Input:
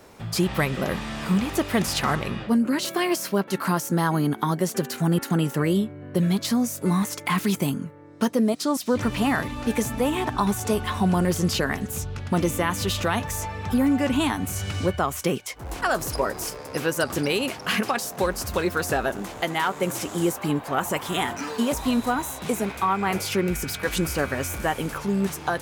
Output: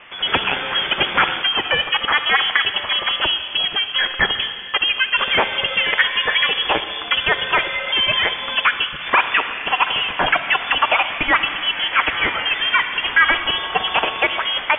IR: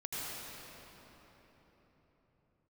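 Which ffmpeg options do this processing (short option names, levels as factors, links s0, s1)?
-filter_complex "[0:a]tiltshelf=f=670:g=-9,aeval=exprs='0.75*sin(PI/2*1.58*val(0)/0.75)':c=same,asplit=2[s0][s1];[1:a]atrim=start_sample=2205[s2];[s1][s2]afir=irnorm=-1:irlink=0,volume=0.266[s3];[s0][s3]amix=inputs=2:normalize=0,asetrate=76440,aresample=44100,lowpass=f=3100:t=q:w=0.5098,lowpass=f=3100:t=q:w=0.6013,lowpass=f=3100:t=q:w=0.9,lowpass=f=3100:t=q:w=2.563,afreqshift=-3600,volume=0.841"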